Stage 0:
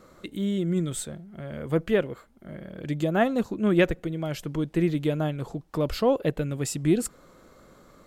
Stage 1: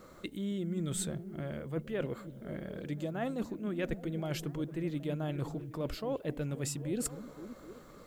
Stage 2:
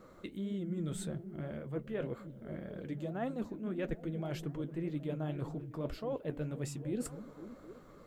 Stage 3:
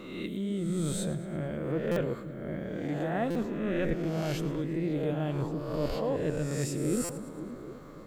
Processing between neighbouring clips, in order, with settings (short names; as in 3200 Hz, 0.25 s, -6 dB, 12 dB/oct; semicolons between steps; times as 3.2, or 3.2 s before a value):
reverse; compressor 10:1, threshold -31 dBFS, peak gain reduction 16 dB; reverse; added noise blue -76 dBFS; delay with a stepping band-pass 0.257 s, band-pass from 160 Hz, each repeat 0.7 oct, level -7 dB; gain -1 dB
high shelf 2800 Hz -8 dB; flange 1.8 Hz, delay 5.2 ms, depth 9.3 ms, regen -51%; gain +2 dB
spectral swells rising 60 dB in 1.07 s; split-band echo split 330 Hz, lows 0.542 s, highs 0.111 s, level -16 dB; stuck buffer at 1.91/3.3/7.04, samples 256, times 8; gain +4.5 dB